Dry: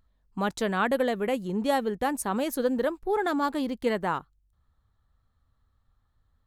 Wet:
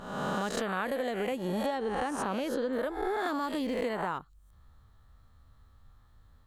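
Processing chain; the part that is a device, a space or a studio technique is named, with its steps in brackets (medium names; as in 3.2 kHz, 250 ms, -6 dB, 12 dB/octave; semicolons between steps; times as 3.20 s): reverse spectral sustain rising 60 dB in 0.81 s; 1.66–2.73 s: low-pass 5.4 kHz 12 dB/octave; serial compression, peaks first (compression 5:1, threshold -34 dBFS, peak gain reduction 14.5 dB; compression 1.5:1, threshold -43 dBFS, peak gain reduction 4.5 dB); trim +8 dB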